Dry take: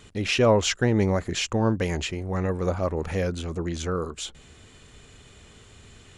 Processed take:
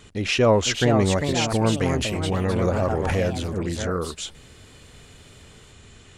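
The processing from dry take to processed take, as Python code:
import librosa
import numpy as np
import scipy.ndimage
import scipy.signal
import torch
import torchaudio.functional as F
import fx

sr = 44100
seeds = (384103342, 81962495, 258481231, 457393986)

y = fx.echo_pitch(x, sr, ms=530, semitones=3, count=2, db_per_echo=-6.0)
y = fx.pre_swell(y, sr, db_per_s=22.0, at=(1.96, 3.57))
y = F.gain(torch.from_numpy(y), 1.5).numpy()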